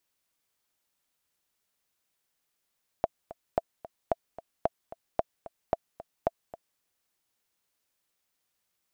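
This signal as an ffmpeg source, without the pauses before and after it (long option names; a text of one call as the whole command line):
ffmpeg -f lavfi -i "aevalsrc='pow(10,(-11-17*gte(mod(t,2*60/223),60/223))/20)*sin(2*PI*668*mod(t,60/223))*exp(-6.91*mod(t,60/223)/0.03)':duration=3.76:sample_rate=44100" out.wav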